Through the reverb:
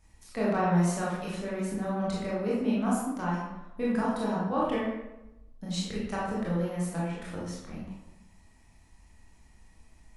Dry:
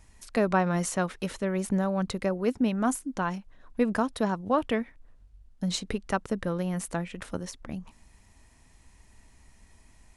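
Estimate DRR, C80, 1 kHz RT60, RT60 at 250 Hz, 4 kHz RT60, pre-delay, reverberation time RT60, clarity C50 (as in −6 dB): −7.0 dB, 3.0 dB, 0.95 s, 1.0 s, 0.65 s, 19 ms, 1.0 s, 0.0 dB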